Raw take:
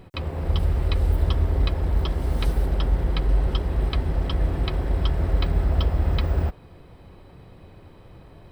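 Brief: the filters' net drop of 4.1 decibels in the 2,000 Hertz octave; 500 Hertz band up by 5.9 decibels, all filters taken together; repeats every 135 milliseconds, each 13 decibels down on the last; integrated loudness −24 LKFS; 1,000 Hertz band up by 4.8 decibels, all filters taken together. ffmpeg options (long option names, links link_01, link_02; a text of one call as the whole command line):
ffmpeg -i in.wav -af "equalizer=frequency=500:width_type=o:gain=6.5,equalizer=frequency=1000:width_type=o:gain=5.5,equalizer=frequency=2000:width_type=o:gain=-7.5,aecho=1:1:135|270|405:0.224|0.0493|0.0108,volume=-0.5dB" out.wav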